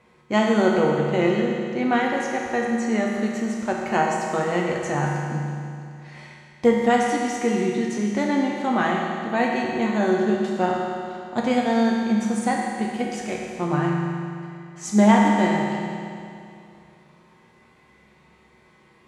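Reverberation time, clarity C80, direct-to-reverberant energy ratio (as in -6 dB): 2.5 s, 1.5 dB, -3.0 dB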